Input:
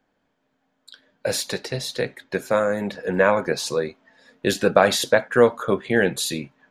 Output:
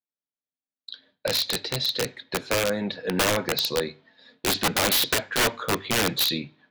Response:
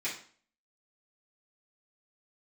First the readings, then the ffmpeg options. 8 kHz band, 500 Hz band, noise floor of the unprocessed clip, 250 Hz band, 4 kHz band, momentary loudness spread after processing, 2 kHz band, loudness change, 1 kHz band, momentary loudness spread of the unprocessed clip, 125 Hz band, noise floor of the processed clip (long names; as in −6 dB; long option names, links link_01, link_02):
+2.0 dB, −8.5 dB, −72 dBFS, −4.5 dB, +5.0 dB, 11 LU, −3.0 dB, −2.5 dB, −4.0 dB, 10 LU, −2.5 dB, below −85 dBFS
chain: -filter_complex "[0:a]lowpass=frequency=4000:width_type=q:width=4.2,agate=range=-33dB:threshold=-50dB:ratio=3:detection=peak,highpass=75,lowshelf=frequency=270:gain=5,bandreject=frequency=50:width_type=h:width=6,bandreject=frequency=100:width_type=h:width=6,bandreject=frequency=150:width_type=h:width=6,aeval=exprs='(mod(3.55*val(0)+1,2)-1)/3.55':channel_layout=same,asplit=2[link_01][link_02];[1:a]atrim=start_sample=2205,lowpass=4000[link_03];[link_02][link_03]afir=irnorm=-1:irlink=0,volume=-21dB[link_04];[link_01][link_04]amix=inputs=2:normalize=0,volume=-4.5dB"